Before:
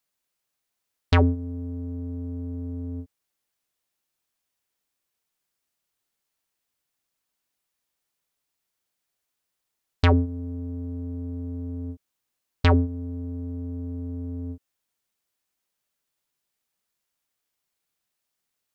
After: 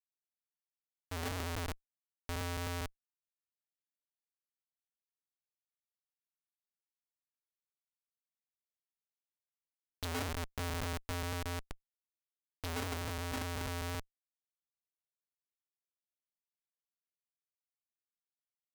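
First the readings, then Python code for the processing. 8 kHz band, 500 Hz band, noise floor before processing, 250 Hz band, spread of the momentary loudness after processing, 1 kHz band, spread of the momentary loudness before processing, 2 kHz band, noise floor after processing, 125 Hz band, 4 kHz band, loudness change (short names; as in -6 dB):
n/a, -11.5 dB, -82 dBFS, -16.5 dB, 8 LU, -8.0 dB, 15 LU, -6.5 dB, under -85 dBFS, -15.5 dB, -4.5 dB, -12.0 dB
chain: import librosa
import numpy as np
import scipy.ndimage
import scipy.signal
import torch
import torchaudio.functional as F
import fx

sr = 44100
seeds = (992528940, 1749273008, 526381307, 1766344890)

p1 = fx.lowpass_res(x, sr, hz=3900.0, q=15.0)
p2 = fx.spec_topn(p1, sr, count=2)
p3 = fx.peak_eq(p2, sr, hz=630.0, db=-8.0, octaves=2.1)
p4 = fx.rev_fdn(p3, sr, rt60_s=3.0, lf_ratio=1.0, hf_ratio=1.0, size_ms=12.0, drr_db=-1.5)
p5 = fx.tremolo_random(p4, sr, seeds[0], hz=3.5, depth_pct=85)
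p6 = p5 + fx.echo_thinned(p5, sr, ms=75, feedback_pct=72, hz=750.0, wet_db=-7.5, dry=0)
p7 = fx.schmitt(p6, sr, flips_db=-40.0)
p8 = fx.low_shelf(p7, sr, hz=470.0, db=-11.0)
p9 = fx.rider(p8, sr, range_db=10, speed_s=0.5)
y = F.gain(torch.from_numpy(p9), 8.5).numpy()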